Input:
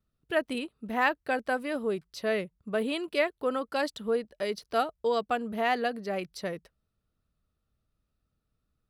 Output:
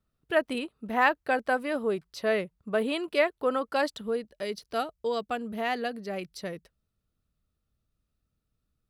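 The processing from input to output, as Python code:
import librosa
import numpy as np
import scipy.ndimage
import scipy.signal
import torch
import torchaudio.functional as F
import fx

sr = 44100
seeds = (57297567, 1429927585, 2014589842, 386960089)

y = fx.peak_eq(x, sr, hz=940.0, db=fx.steps((0.0, 3.5), (4.01, -3.5)), octaves=2.4)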